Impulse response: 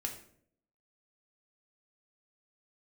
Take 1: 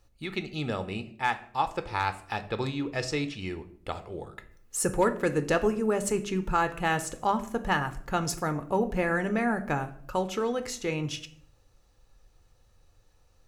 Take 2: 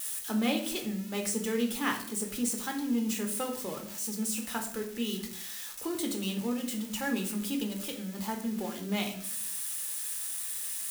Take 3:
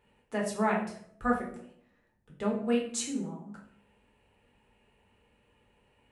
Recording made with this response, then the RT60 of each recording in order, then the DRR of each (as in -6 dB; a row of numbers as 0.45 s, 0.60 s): 2; 0.60 s, 0.60 s, 0.60 s; 9.0 dB, 1.5 dB, -3.0 dB